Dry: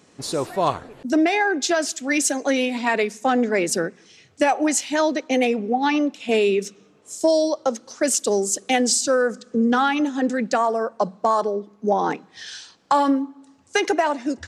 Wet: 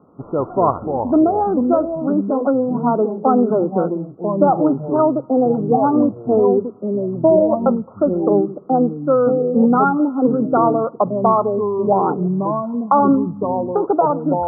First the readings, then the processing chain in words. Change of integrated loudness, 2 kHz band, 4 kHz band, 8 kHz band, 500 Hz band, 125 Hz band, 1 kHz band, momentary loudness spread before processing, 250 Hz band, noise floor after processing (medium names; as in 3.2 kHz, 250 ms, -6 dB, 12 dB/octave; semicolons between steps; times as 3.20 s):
+4.0 dB, under -10 dB, under -40 dB, under -40 dB, +5.5 dB, +13.5 dB, +4.5 dB, 8 LU, +6.5 dB, -39 dBFS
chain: Chebyshev low-pass 1.4 kHz, order 10; ever faster or slower copies 147 ms, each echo -4 st, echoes 3, each echo -6 dB; trim +5 dB